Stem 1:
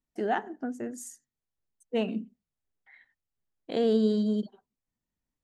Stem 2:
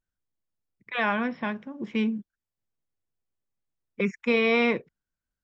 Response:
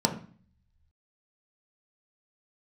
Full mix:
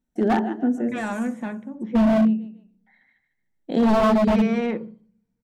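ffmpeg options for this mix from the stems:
-filter_complex "[0:a]lowshelf=f=270:g=10,volume=1,asplit=3[s0][s1][s2];[s1]volume=0.168[s3];[s2]volume=0.422[s4];[1:a]aemphasis=mode=reproduction:type=75fm,asoftclip=type=tanh:threshold=0.0944,volume=0.631,asplit=3[s5][s6][s7];[s6]volume=0.158[s8];[s7]apad=whole_len=239653[s9];[s0][s9]sidechaincompress=threshold=0.00398:ratio=8:attack=5.5:release=1410[s10];[2:a]atrim=start_sample=2205[s11];[s3][s8]amix=inputs=2:normalize=0[s12];[s12][s11]afir=irnorm=-1:irlink=0[s13];[s4]aecho=0:1:150|300|450|600:1|0.31|0.0961|0.0298[s14];[s10][s5][s13][s14]amix=inputs=4:normalize=0,aeval=exprs='0.237*(abs(mod(val(0)/0.237+3,4)-2)-1)':c=same"

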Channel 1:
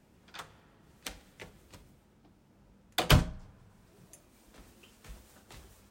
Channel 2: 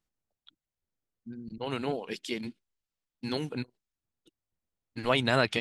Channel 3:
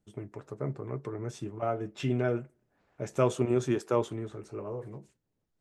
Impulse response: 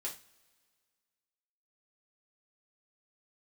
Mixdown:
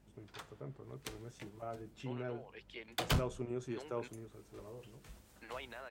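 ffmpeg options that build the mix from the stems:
-filter_complex "[0:a]asoftclip=type=tanh:threshold=0.106,aeval=exprs='val(0)+0.000708*(sin(2*PI*50*n/s)+sin(2*PI*2*50*n/s)/2+sin(2*PI*3*50*n/s)/3+sin(2*PI*4*50*n/s)/4+sin(2*PI*5*50*n/s)/5)':c=same,volume=0.531[s0];[1:a]acrossover=split=420 3100:gain=0.0794 1 0.0708[s1][s2][s3];[s1][s2][s3]amix=inputs=3:normalize=0,alimiter=level_in=1.26:limit=0.0631:level=0:latency=1,volume=0.794,tremolo=f=0.81:d=0.59,adelay=450,volume=0.422[s4];[2:a]volume=0.211,asplit=2[s5][s6];[s6]apad=whole_len=260415[s7];[s0][s7]sidechaincompress=threshold=0.00891:ratio=8:attack=5:release=140[s8];[s8][s4][s5]amix=inputs=3:normalize=0"

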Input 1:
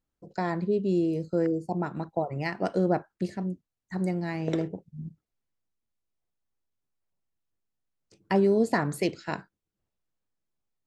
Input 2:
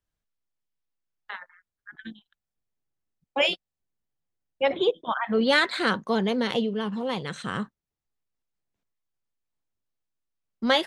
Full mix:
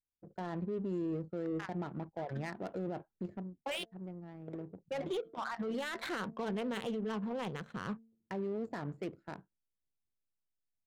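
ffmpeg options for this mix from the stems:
-filter_complex "[0:a]agate=range=0.282:threshold=0.00251:ratio=16:detection=peak,volume=1.19,afade=t=out:st=3.29:d=0.22:silence=0.281838,afade=t=in:st=4.49:d=0.52:silence=0.446684[s0];[1:a]bandreject=f=225.1:t=h:w=4,bandreject=f=450.2:t=h:w=4,bandreject=f=675.3:t=h:w=4,alimiter=limit=0.119:level=0:latency=1:release=19,adelay=300,volume=0.531[s1];[s0][s1]amix=inputs=2:normalize=0,equalizer=f=7200:w=4.2:g=13.5,adynamicsmooth=sensitivity=7:basefreq=580,alimiter=level_in=2:limit=0.0631:level=0:latency=1:release=42,volume=0.501"

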